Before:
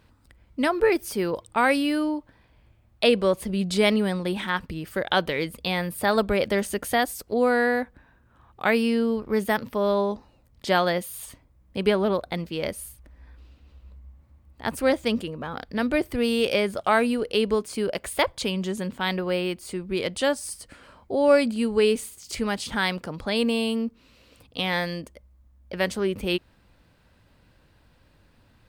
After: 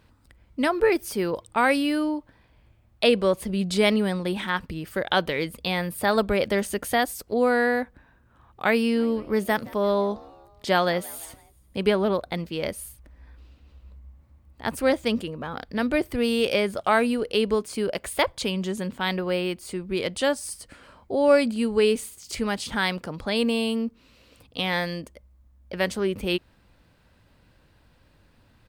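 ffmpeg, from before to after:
-filter_complex "[0:a]asplit=3[a][b][c];[a]afade=t=out:st=8.94:d=0.02[d];[b]asplit=4[e][f][g][h];[f]adelay=170,afreqshift=71,volume=-23dB[i];[g]adelay=340,afreqshift=142,volume=-28.7dB[j];[h]adelay=510,afreqshift=213,volume=-34.4dB[k];[e][i][j][k]amix=inputs=4:normalize=0,afade=t=in:st=8.94:d=0.02,afade=t=out:st=11.92:d=0.02[l];[c]afade=t=in:st=11.92:d=0.02[m];[d][l][m]amix=inputs=3:normalize=0"

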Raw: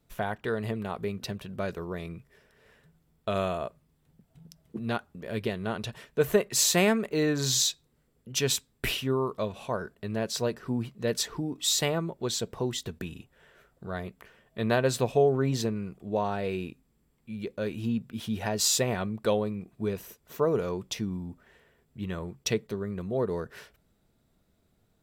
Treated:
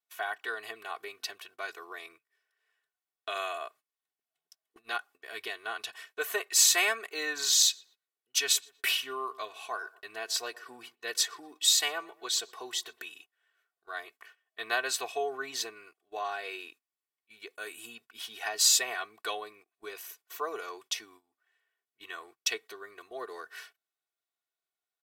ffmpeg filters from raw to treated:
-filter_complex "[0:a]asplit=3[a][b][c];[a]afade=t=out:st=7.68:d=0.02[d];[b]asplit=2[e][f];[f]adelay=121,lowpass=f=1.8k:p=1,volume=-19.5dB,asplit=2[g][h];[h]adelay=121,lowpass=f=1.8k:p=1,volume=0.44,asplit=2[i][j];[j]adelay=121,lowpass=f=1.8k:p=1,volume=0.44[k];[e][g][i][k]amix=inputs=4:normalize=0,afade=t=in:st=7.68:d=0.02,afade=t=out:st=13.1:d=0.02[l];[c]afade=t=in:st=13.1:d=0.02[m];[d][l][m]amix=inputs=3:normalize=0,asettb=1/sr,asplit=3[n][o][p];[n]atrim=end=17.554[q];[o]atrim=start=17.55:end=17.95,asetpts=PTS-STARTPTS,afade=t=in:d=0.004:c=qsin,afade=t=out:st=0.396:d=0.004:c=qsin,highshelf=f=6.7k:t=q:w=3:g=7[r];[p]atrim=start=17.946[s];[q][r]acrossfade=d=0.004:c1=hsin:c2=qsin[t];[t][s]acrossfade=d=0.004:c1=qsin:c2=hsin,highpass=1.1k,agate=range=-17dB:threshold=-57dB:ratio=16:detection=peak,aecho=1:1:2.7:0.91"

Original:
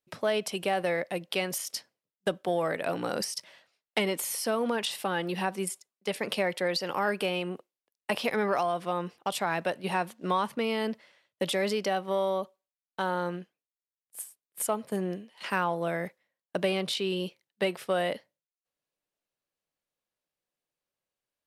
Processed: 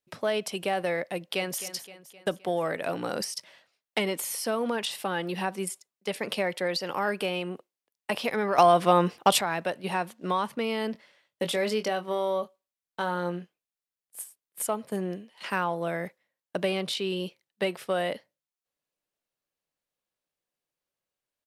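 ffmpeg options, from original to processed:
-filter_complex "[0:a]asplit=2[a][b];[b]afade=t=in:st=1.12:d=0.01,afade=t=out:st=1.6:d=0.01,aecho=0:1:260|520|780|1040|1300|1560:0.211349|0.116242|0.063933|0.0351632|0.0193397|0.0106369[c];[a][c]amix=inputs=2:normalize=0,asettb=1/sr,asplit=3[d][e][f];[d]atrim=end=10.924[g];[e]atrim=start=10.92:end=14.24,asetpts=PTS-STARTPTS,afade=t=in:d=0.004:c=qsin,afade=t=out:st=3.316:d=0.004:c=qsin,asplit=2[h][i];[i]adelay=23,volume=-9dB[j];[h][j]amix=inputs=2:normalize=0,atrim=end_sample=146412[k];[f]atrim=start=14.236[l];[g][k]acrossfade=d=0.004:c1=hsin:c2=qsin[m];[m][l]acrossfade=d=0.004:c1=qsin:c2=hsin,asplit=3[n][o][p];[n]atrim=end=8.582[q];[o]atrim=start=8.578:end=9.412,asetpts=PTS-STARTPTS,volume=10.5dB[r];[p]atrim=start=9.408[s];[q][r]acrossfade=d=0.004:c1=hsin:c2=hsin[t];[t][s]acrossfade=d=0.004:c1=hsin:c2=hsin"

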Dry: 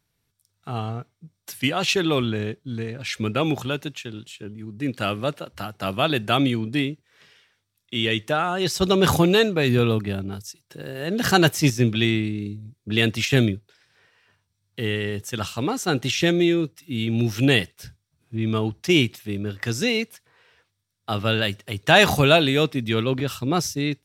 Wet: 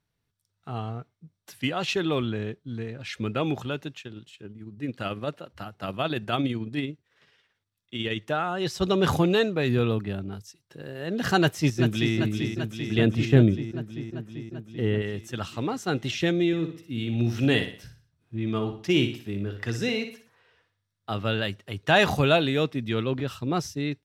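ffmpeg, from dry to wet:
-filter_complex "[0:a]asettb=1/sr,asplit=3[a][b][c];[a]atrim=end=4.014[d];[b]atrim=start=4.01:end=8.29,asetpts=PTS-STARTPTS,afade=t=in:d=0.004:c=qsin,afade=t=out:st=4.276:d=0.004:c=qsin,tremolo=f=18:d=0.39[e];[c]atrim=start=8.286[f];[d][e]acrossfade=d=0.004:c1=hsin:c2=qsin[g];[g][f]acrossfade=d=0.004:c1=qsin:c2=hsin,asplit=2[h][i];[i]afade=t=in:st=11.39:d=0.01,afade=t=out:st=12.15:d=0.01,aecho=0:1:390|780|1170|1560|1950|2340|2730|3120|3510|3900|4290|4680:0.446684|0.335013|0.25126|0.188445|0.141333|0.106|0.0795001|0.0596251|0.0447188|0.0335391|0.0251543|0.0188657[j];[h][j]amix=inputs=2:normalize=0,asettb=1/sr,asplit=3[k][l][m];[k]atrim=end=12.984[n];[l]atrim=start=12.98:end=15.02,asetpts=PTS-STARTPTS,afade=t=in:d=0.004:c=qsin,afade=t=out:st=2.036:d=0.004:c=qsin,tiltshelf=f=1.3k:g=6[o];[m]atrim=start=15.016[p];[n][o]acrossfade=d=0.004:c1=hsin:c2=qsin[q];[q][p]acrossfade=d=0.004:c1=qsin:c2=hsin,asettb=1/sr,asplit=3[r][s][t];[r]atrim=end=16.474[u];[s]atrim=start=16.47:end=21.1,asetpts=PTS-STARTPTS,afade=t=in:d=0.004:c=qsin,afade=t=out:st=4.626:d=0.004:c=qsin,aecho=1:1:60|120|180|240:0.376|0.15|0.0601|0.0241,atrim=end_sample=204183[v];[t]atrim=start=21.096[w];[u][v]acrossfade=d=0.004:c1=hsin:c2=qsin[x];[x][w]acrossfade=d=0.004:c1=qsin:c2=hsin,aemphasis=mode=reproduction:type=cd,bandreject=f=2.3k:w=27,volume=-4.5dB"

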